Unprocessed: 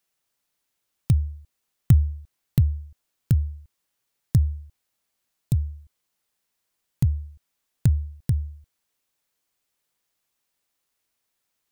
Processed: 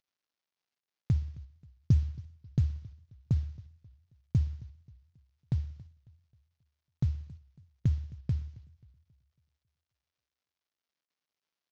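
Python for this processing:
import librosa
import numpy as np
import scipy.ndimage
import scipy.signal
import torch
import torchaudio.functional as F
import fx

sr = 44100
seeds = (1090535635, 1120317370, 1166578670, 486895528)

y = fx.cvsd(x, sr, bps=32000)
y = fx.echo_feedback(y, sr, ms=61, feedback_pct=55, wet_db=-22.0)
y = fx.echo_warbled(y, sr, ms=271, feedback_pct=40, rate_hz=2.8, cents=197, wet_db=-21)
y = F.gain(torch.from_numpy(y), -7.5).numpy()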